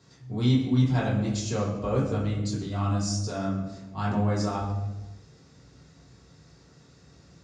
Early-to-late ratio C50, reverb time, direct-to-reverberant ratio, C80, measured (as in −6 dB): 4.0 dB, 1.1 s, −6.5 dB, 6.5 dB